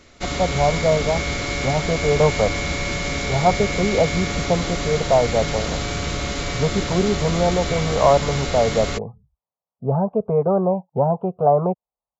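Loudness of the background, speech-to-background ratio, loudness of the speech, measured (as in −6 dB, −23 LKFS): −24.5 LKFS, 3.5 dB, −21.0 LKFS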